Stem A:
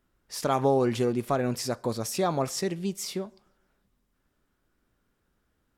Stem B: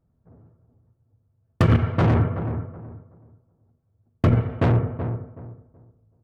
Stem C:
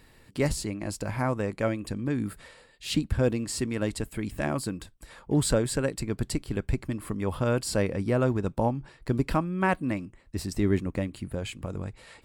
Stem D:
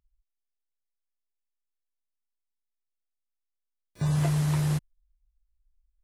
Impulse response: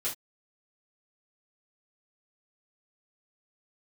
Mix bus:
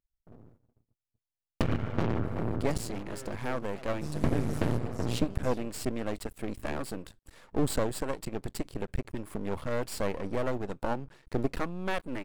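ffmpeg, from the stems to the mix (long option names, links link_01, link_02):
-filter_complex "[0:a]aeval=exprs='0.075*(abs(mod(val(0)/0.075+3,4)-2)-1)':channel_layout=same,adelay=2450,volume=-17.5dB[link_01];[1:a]acompressor=threshold=-25dB:ratio=4,agate=range=-45dB:threshold=-57dB:ratio=16:detection=peak,highshelf=frequency=2300:gain=6.5,volume=-1dB[link_02];[2:a]adynamicequalizer=threshold=0.0141:dfrequency=240:dqfactor=0.86:tfrequency=240:tqfactor=0.86:attack=5:release=100:ratio=0.375:range=3:mode=cutabove:tftype=bell,adelay=2250,volume=-2.5dB[link_03];[3:a]volume=-10.5dB[link_04];[link_01][link_02][link_03][link_04]amix=inputs=4:normalize=0,equalizer=frequency=300:width=0.61:gain=5,aeval=exprs='max(val(0),0)':channel_layout=same"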